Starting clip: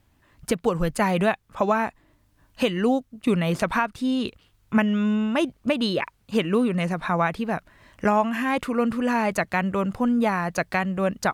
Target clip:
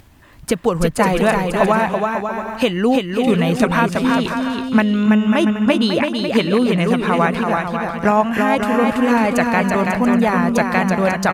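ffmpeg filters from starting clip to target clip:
ffmpeg -i in.wav -af "acompressor=mode=upward:threshold=-44dB:ratio=2.5,aecho=1:1:330|544.5|683.9|774.6|833.5:0.631|0.398|0.251|0.158|0.1,volume=5.5dB" out.wav

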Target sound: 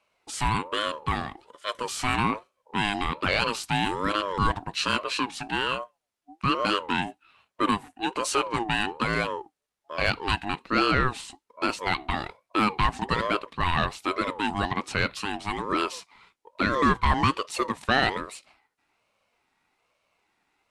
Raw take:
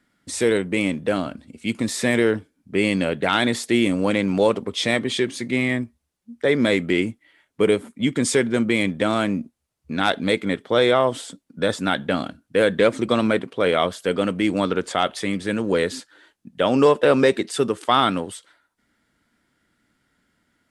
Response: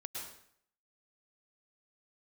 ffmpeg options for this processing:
-filter_complex "[0:a]asplit=2[link_01][link_02];[link_02]highpass=frequency=720:poles=1,volume=8dB,asoftclip=type=tanh:threshold=-4dB[link_03];[link_01][link_03]amix=inputs=2:normalize=0,lowpass=frequency=5100:poles=1,volume=-6dB,aeval=exprs='val(0)*sin(2*PI*670*n/s+670*0.25/1.2*sin(2*PI*1.2*n/s))':channel_layout=same,volume=-3dB"

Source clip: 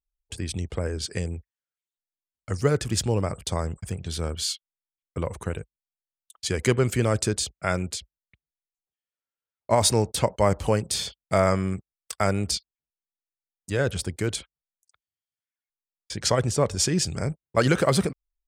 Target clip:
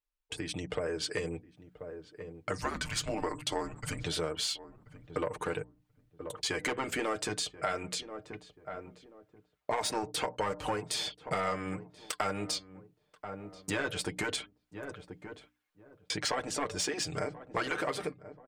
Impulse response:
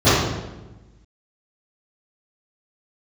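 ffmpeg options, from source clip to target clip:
-filter_complex "[0:a]flanger=delay=0.7:depth=3.9:regen=-79:speed=0.19:shape=sinusoidal,asettb=1/sr,asplit=3[link_01][link_02][link_03];[link_01]atrim=end=2.584[link_04];[link_02]atrim=start=2.58:end=4.04,asetpts=PTS-STARTPTS,afade=type=in:duration=0.004:curve=qsin,afade=type=out:start_time=1.456:duration=0.004:curve=qsin,afreqshift=-210[link_05];[link_03]atrim=start=4.036[link_06];[link_04][link_05]acrossfade=duration=0.004:curve1=hsin:curve2=qsin[link_07];[link_07][link_06]acrossfade=duration=0.004:curve1=qsin:curve2=hsin,dynaudnorm=framelen=180:gausssize=9:maxgain=12.5dB,asoftclip=type=tanh:threshold=-9.5dB,aecho=1:1:6.6:0.64,afftfilt=real='re*lt(hypot(re,im),0.891)':imag='im*lt(hypot(re,im),0.891)':win_size=1024:overlap=0.75,bass=frequency=250:gain=-12,treble=frequency=4000:gain=-10,bandreject=frequency=60:width_type=h:width=6,bandreject=frequency=120:width_type=h:width=6,bandreject=frequency=180:width_type=h:width=6,bandreject=frequency=240:width_type=h:width=6,bandreject=frequency=300:width_type=h:width=6,asplit=2[link_08][link_09];[link_09]adelay=1033,lowpass=frequency=830:poles=1,volume=-20.5dB,asplit=2[link_10][link_11];[link_11]adelay=1033,lowpass=frequency=830:poles=1,volume=0.2[link_12];[link_08][link_10][link_12]amix=inputs=3:normalize=0,acompressor=threshold=-42dB:ratio=3,volume=6.5dB"

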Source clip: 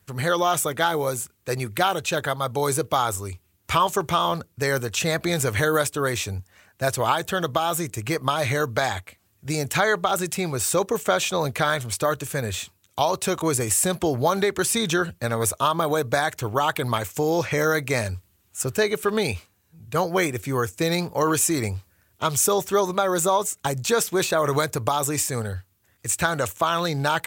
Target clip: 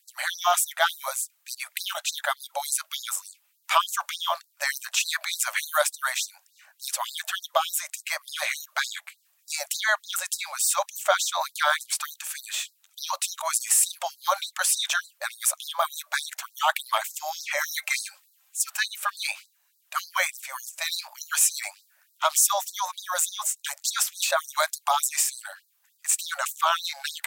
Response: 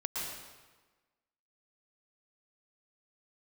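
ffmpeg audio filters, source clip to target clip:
-filter_complex "[0:a]asettb=1/sr,asplit=3[link_01][link_02][link_03];[link_01]atrim=end=17.674[link_04];[link_02]atrim=start=17.67:end=18.71,asetpts=PTS-STARTPTS,afade=type=in:duration=0.004:curve=qsin,afade=type=out:start_time=1.036:duration=0.004:curve=qsin,aecho=1:1:3.8:0.68,atrim=end_sample=45864[link_05];[link_03]atrim=start=18.706[link_06];[link_04][link_05]acrossfade=duration=0.004:curve1=hsin:curve2=qsin[link_07];[link_07][link_06]acrossfade=duration=0.004:curve1=qsin:curve2=hsin,afftfilt=real='re*gte(b*sr/1024,530*pow(3900/530,0.5+0.5*sin(2*PI*3.4*pts/sr)))':imag='im*gte(b*sr/1024,530*pow(3900/530,0.5+0.5*sin(2*PI*3.4*pts/sr)))':win_size=1024:overlap=0.75,volume=1.5dB"

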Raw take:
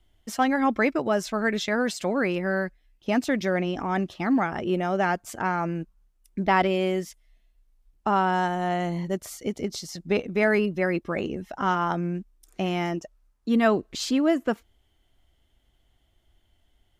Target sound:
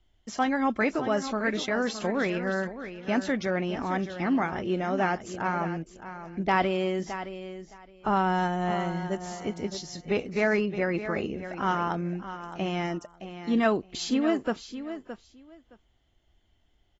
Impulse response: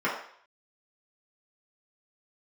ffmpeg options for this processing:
-filter_complex "[0:a]asettb=1/sr,asplit=3[link_01][link_02][link_03];[link_01]atrim=end=8.084[link_04];[link_02]atrim=start=8.08:end=8.71,asetpts=PTS-STARTPTS,afade=type=in:duration=0.004:curve=qsin,afade=type=out:start_time=0.626:duration=0.004:curve=qsin,lowshelf=frequency=120:gain=12[link_05];[link_03]atrim=start=8.706[link_06];[link_04][link_05]acrossfade=duration=0.004:curve1=hsin:curve2=qsin[link_07];[link_07][link_06]acrossfade=duration=0.004:curve1=qsin:curve2=hsin,aecho=1:1:617|1234:0.266|0.0452,volume=-3dB" -ar 22050 -c:a aac -b:a 24k

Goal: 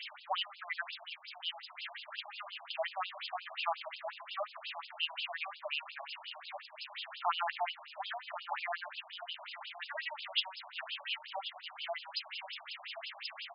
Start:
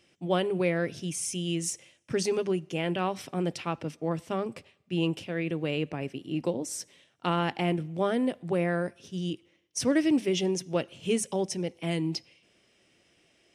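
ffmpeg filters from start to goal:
ffmpeg -i in.wav -filter_complex "[0:a]aeval=exprs='val(0)+0.5*0.0188*sgn(val(0))':channel_layout=same,aecho=1:1:1091|2182|3273|4364:0.251|0.108|0.0464|0.02,acrossover=split=400[link_01][link_02];[link_02]flanger=delay=3:depth=8.7:regen=66:speed=0.16:shape=triangular[link_03];[link_01][link_03]amix=inputs=2:normalize=0,lowpass=frequency=7400:width_type=q:width=4.9,afftfilt=real='re*between(b*sr/1024,810*pow(3700/810,0.5+0.5*sin(2*PI*5.6*pts/sr))/1.41,810*pow(3700/810,0.5+0.5*sin(2*PI*5.6*pts/sr))*1.41)':imag='im*between(b*sr/1024,810*pow(3700/810,0.5+0.5*sin(2*PI*5.6*pts/sr))/1.41,810*pow(3700/810,0.5+0.5*sin(2*PI*5.6*pts/sr))*1.41)':win_size=1024:overlap=0.75,volume=4.5dB" out.wav

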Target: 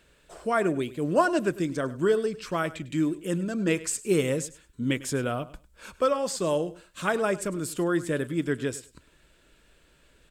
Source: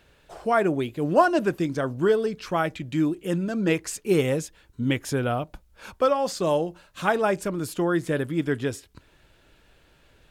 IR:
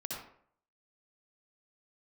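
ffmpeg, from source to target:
-af "equalizer=frequency=100:width_type=o:width=0.33:gain=-12,equalizer=frequency=800:width_type=o:width=0.33:gain=-8,equalizer=frequency=8000:width_type=o:width=0.33:gain=9,aecho=1:1:101|202:0.133|0.024,volume=-2dB"

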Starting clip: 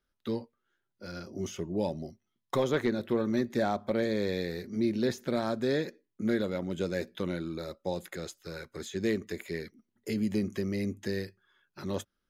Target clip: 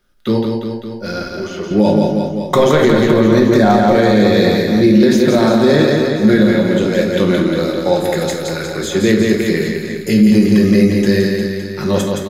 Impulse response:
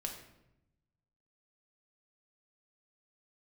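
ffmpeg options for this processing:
-filter_complex "[0:a]asettb=1/sr,asplit=3[link_01][link_02][link_03];[link_01]atrim=end=1.234[link_04];[link_02]atrim=start=1.23:end=1.71,asetpts=PTS-STARTPTS,afade=type=in:duration=0.004:curve=qsin,afade=type=out:start_time=0.476:duration=0.004:curve=qsin,bandpass=frequency=1000:width_type=q:width=0.78:csg=0[link_05];[link_03]atrim=start=1.706[link_06];[link_04][link_05]acrossfade=duration=0.004:curve1=hsin:curve2=qsin[link_07];[link_07][link_06]acrossfade=duration=0.004:curve1=qsin:curve2=hsin,asettb=1/sr,asplit=3[link_08][link_09][link_10];[link_08]atrim=end=6.424[link_11];[link_09]atrim=start=6.42:end=6.99,asetpts=PTS-STARTPTS,afade=type=in:duration=0.004:curve=qsin,afade=type=out:start_time=0.566:duration=0.004:curve=qsin,acompressor=threshold=-31dB:ratio=6[link_12];[link_10]atrim=start=6.986[link_13];[link_11][link_12]acrossfade=duration=0.004:curve1=hsin:curve2=qsin[link_14];[link_14][link_13]acrossfade=duration=0.004:curve1=qsin:curve2=hsin,aecho=1:1:170|357|562.7|789|1038:0.631|0.398|0.251|0.158|0.1[link_15];[1:a]atrim=start_sample=2205,afade=type=out:start_time=0.15:duration=0.01,atrim=end_sample=7056[link_16];[link_15][link_16]afir=irnorm=-1:irlink=0,alimiter=level_in=20dB:limit=-1dB:release=50:level=0:latency=1,volume=-1dB"

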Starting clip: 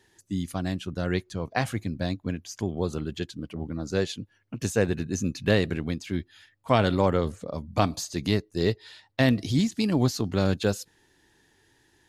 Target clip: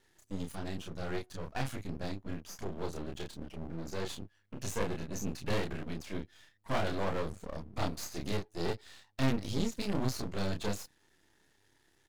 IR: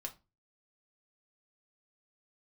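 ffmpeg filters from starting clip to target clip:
-filter_complex "[0:a]aeval=exprs='(tanh(3.16*val(0)+0.75)-tanh(0.75))/3.16':channel_layout=same,asplit=2[link_01][link_02];[link_02]adelay=30,volume=-2.5dB[link_03];[link_01][link_03]amix=inputs=2:normalize=0,aeval=exprs='max(val(0),0)':channel_layout=same"

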